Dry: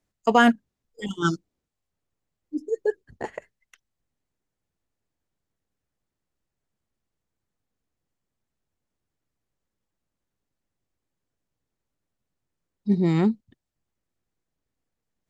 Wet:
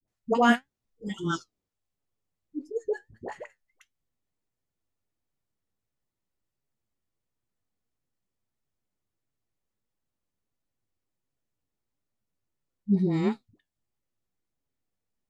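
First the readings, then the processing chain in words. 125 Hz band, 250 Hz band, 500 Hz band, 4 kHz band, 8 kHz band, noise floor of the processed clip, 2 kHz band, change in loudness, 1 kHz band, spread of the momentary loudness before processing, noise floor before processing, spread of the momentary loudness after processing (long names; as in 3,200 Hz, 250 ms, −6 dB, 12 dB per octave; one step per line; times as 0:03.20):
−4.5 dB, −4.0 dB, −4.0 dB, −4.5 dB, can't be measured, below −85 dBFS, −4.5 dB, −4.0 dB, −4.0 dB, 18 LU, −84 dBFS, 19 LU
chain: all-pass dispersion highs, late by 78 ms, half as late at 540 Hz
flanger 1.5 Hz, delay 6.9 ms, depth 4.2 ms, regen +64%
notch filter 1,600 Hz, Q 28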